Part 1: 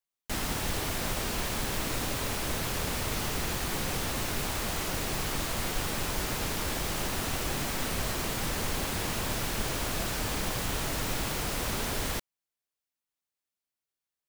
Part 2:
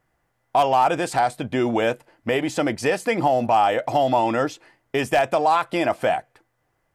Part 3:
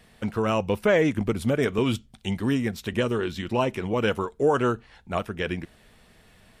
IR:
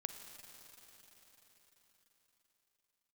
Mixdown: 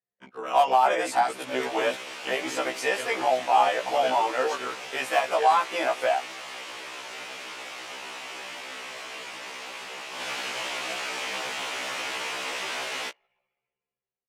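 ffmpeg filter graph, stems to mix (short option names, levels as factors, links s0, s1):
-filter_complex "[0:a]lowpass=3300,dynaudnorm=f=230:g=5:m=3.98,aexciter=amount=1.4:drive=8:freq=2200,adelay=900,volume=0.376,afade=t=in:st=10.09:d=0.2:silence=0.473151,asplit=2[s0][s1];[s1]volume=0.376[s2];[1:a]volume=1[s3];[2:a]tremolo=f=33:d=0.947,volume=0.841,asplit=2[s4][s5];[s5]volume=0.447[s6];[3:a]atrim=start_sample=2205[s7];[s2][s6]amix=inputs=2:normalize=0[s8];[s8][s7]afir=irnorm=-1:irlink=0[s9];[s0][s3][s4][s9]amix=inputs=4:normalize=0,highpass=550,anlmdn=0.1,afftfilt=real='re*1.73*eq(mod(b,3),0)':imag='im*1.73*eq(mod(b,3),0)':win_size=2048:overlap=0.75"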